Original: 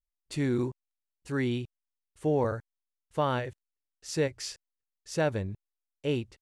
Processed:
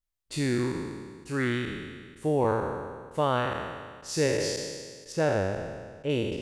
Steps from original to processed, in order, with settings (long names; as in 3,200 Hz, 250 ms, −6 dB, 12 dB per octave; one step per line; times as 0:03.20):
peak hold with a decay on every bin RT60 1.70 s
0:05.12–0:06.10: high-shelf EQ 3,400 Hz −10 dB